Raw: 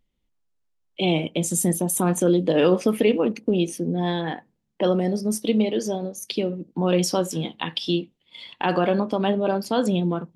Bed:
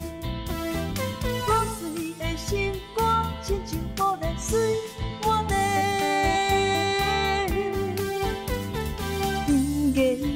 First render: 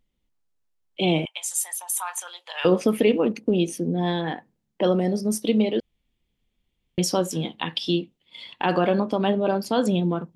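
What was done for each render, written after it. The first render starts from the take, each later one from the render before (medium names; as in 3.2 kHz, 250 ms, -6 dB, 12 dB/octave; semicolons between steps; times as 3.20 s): 1.25–2.65 s: elliptic high-pass 870 Hz, stop band 80 dB; 5.80–6.98 s: room tone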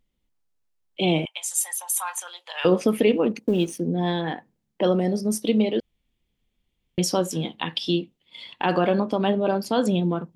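1.57–2.16 s: comb 3.7 ms; 3.39–3.80 s: companding laws mixed up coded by A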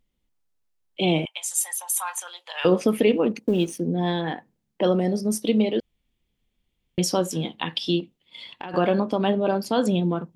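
8.00–8.74 s: compression, threshold -31 dBFS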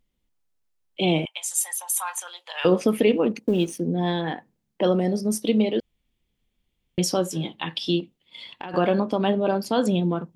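7.14–7.78 s: comb of notches 240 Hz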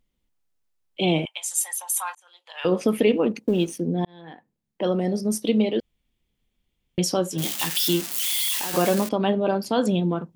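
2.15–2.92 s: fade in; 4.05–5.20 s: fade in linear; 7.38–9.09 s: zero-crossing glitches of -16 dBFS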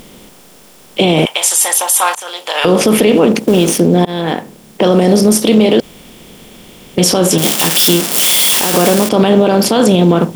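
spectral levelling over time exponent 0.6; loudness maximiser +15 dB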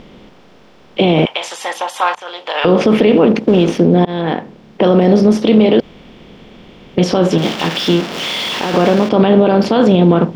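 distance through air 230 m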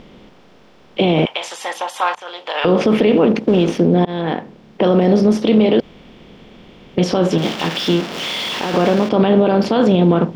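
trim -3 dB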